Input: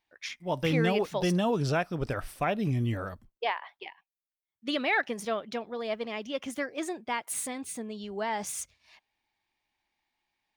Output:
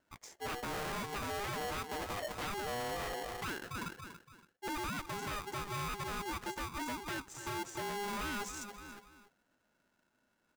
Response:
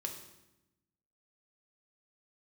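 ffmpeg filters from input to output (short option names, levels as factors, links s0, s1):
-filter_complex "[0:a]asplit=2[s0][s1];[s1]adelay=283,lowpass=f=2400:p=1,volume=0.141,asplit=2[s2][s3];[s3]adelay=283,lowpass=f=2400:p=1,volume=0.32,asplit=2[s4][s5];[s5]adelay=283,lowpass=f=2400:p=1,volume=0.32[s6];[s0][s2][s4][s6]amix=inputs=4:normalize=0,acompressor=threshold=0.00891:ratio=4,asuperstop=centerf=3000:order=12:qfactor=0.63,highshelf=f=4900:g=-8,aresample=16000,aeval=exprs='0.0251*sin(PI/2*2.82*val(0)/0.0251)':c=same,aresample=44100,aeval=exprs='val(0)*sgn(sin(2*PI*610*n/s))':c=same,volume=0.668"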